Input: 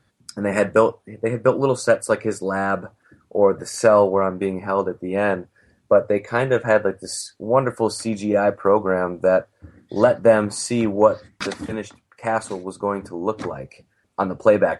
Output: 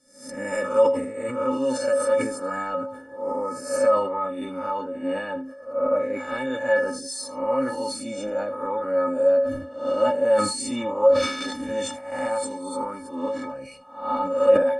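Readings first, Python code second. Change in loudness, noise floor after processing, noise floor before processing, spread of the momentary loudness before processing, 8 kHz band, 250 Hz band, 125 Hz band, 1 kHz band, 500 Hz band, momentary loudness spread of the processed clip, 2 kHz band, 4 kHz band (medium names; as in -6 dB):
-4.0 dB, -42 dBFS, -66 dBFS, 13 LU, -2.0 dB, -5.5 dB, -15.0 dB, -4.0 dB, -3.5 dB, 11 LU, -5.5 dB, +0.5 dB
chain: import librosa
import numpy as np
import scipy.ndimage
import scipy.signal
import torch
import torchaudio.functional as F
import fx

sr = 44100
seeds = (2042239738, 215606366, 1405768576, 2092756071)

p1 = fx.spec_swells(x, sr, rise_s=0.64)
p2 = fx.recorder_agc(p1, sr, target_db=-6.5, rise_db_per_s=13.0, max_gain_db=30)
p3 = fx.stiff_resonator(p2, sr, f0_hz=260.0, decay_s=0.26, stiffness=0.03)
p4 = p3 + fx.echo_single(p3, sr, ms=79, db=-19.0, dry=0)
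p5 = fx.sustainer(p4, sr, db_per_s=71.0)
y = p5 * 10.0 ** (3.5 / 20.0)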